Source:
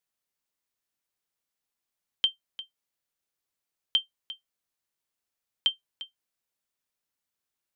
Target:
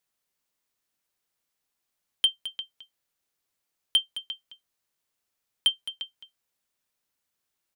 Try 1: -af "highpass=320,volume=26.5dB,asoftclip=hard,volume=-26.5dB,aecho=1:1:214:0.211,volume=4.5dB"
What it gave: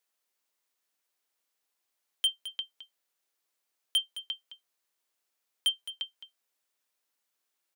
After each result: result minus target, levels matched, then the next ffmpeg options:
250 Hz band −6.5 dB; gain into a clipping stage and back: distortion +7 dB
-af "volume=26.5dB,asoftclip=hard,volume=-26.5dB,aecho=1:1:214:0.211,volume=4.5dB"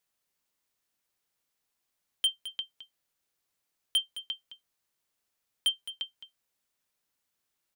gain into a clipping stage and back: distortion +7 dB
-af "volume=19.5dB,asoftclip=hard,volume=-19.5dB,aecho=1:1:214:0.211,volume=4.5dB"

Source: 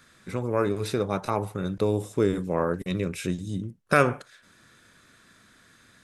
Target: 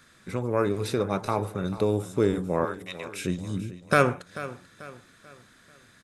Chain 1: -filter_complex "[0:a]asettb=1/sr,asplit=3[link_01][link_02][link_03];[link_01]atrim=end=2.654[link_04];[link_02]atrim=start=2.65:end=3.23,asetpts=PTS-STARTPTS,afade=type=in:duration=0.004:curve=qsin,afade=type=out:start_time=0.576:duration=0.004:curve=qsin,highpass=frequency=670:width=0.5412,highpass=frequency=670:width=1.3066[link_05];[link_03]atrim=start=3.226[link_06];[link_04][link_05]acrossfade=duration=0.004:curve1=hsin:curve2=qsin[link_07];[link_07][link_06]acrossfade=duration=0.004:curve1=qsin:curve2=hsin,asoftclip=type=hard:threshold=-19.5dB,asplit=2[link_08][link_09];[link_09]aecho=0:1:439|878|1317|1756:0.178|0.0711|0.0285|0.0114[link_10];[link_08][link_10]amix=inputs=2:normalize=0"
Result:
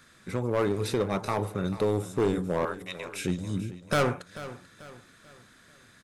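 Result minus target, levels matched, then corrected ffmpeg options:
hard clipping: distortion +19 dB
-filter_complex "[0:a]asettb=1/sr,asplit=3[link_01][link_02][link_03];[link_01]atrim=end=2.654[link_04];[link_02]atrim=start=2.65:end=3.23,asetpts=PTS-STARTPTS,afade=type=in:duration=0.004:curve=qsin,afade=type=out:start_time=0.576:duration=0.004:curve=qsin,highpass=frequency=670:width=0.5412,highpass=frequency=670:width=1.3066[link_05];[link_03]atrim=start=3.226[link_06];[link_04][link_05]acrossfade=duration=0.004:curve1=hsin:curve2=qsin[link_07];[link_07][link_06]acrossfade=duration=0.004:curve1=qsin:curve2=hsin,asoftclip=type=hard:threshold=-8.5dB,asplit=2[link_08][link_09];[link_09]aecho=0:1:439|878|1317|1756:0.178|0.0711|0.0285|0.0114[link_10];[link_08][link_10]amix=inputs=2:normalize=0"

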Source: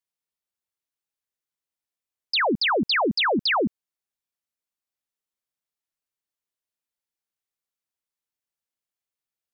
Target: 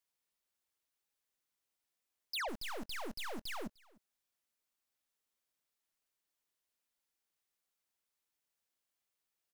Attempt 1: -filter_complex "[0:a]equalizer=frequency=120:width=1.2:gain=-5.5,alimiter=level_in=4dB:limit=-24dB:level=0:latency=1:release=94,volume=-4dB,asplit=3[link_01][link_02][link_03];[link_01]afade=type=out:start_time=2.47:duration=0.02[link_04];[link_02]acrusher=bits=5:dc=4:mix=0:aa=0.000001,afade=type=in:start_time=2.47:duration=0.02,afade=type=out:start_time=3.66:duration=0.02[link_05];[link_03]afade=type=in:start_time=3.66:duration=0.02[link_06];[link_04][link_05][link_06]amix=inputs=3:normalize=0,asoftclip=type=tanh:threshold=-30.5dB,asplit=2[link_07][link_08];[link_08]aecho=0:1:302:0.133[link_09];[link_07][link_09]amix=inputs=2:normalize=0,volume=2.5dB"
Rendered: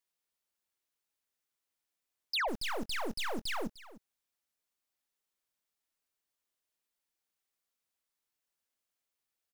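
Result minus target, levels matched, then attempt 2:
soft clipping: distortion −8 dB; echo-to-direct +7.5 dB
-filter_complex "[0:a]equalizer=frequency=120:width=1.2:gain=-5.5,alimiter=level_in=4dB:limit=-24dB:level=0:latency=1:release=94,volume=-4dB,asplit=3[link_01][link_02][link_03];[link_01]afade=type=out:start_time=2.47:duration=0.02[link_04];[link_02]acrusher=bits=5:dc=4:mix=0:aa=0.000001,afade=type=in:start_time=2.47:duration=0.02,afade=type=out:start_time=3.66:duration=0.02[link_05];[link_03]afade=type=in:start_time=3.66:duration=0.02[link_06];[link_04][link_05][link_06]amix=inputs=3:normalize=0,asoftclip=type=tanh:threshold=-39dB,asplit=2[link_07][link_08];[link_08]aecho=0:1:302:0.0562[link_09];[link_07][link_09]amix=inputs=2:normalize=0,volume=2.5dB"

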